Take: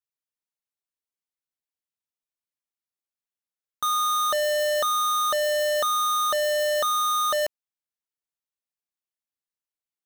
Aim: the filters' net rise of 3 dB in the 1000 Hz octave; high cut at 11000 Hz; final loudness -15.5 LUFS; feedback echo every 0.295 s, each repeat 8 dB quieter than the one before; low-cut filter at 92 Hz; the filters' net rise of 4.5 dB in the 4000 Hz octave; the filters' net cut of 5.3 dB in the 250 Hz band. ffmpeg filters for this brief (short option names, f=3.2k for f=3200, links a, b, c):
-af "highpass=92,lowpass=11k,equalizer=f=250:t=o:g=-8.5,equalizer=f=1k:t=o:g=4,equalizer=f=4k:t=o:g=5,aecho=1:1:295|590|885|1180|1475:0.398|0.159|0.0637|0.0255|0.0102,volume=4.5dB"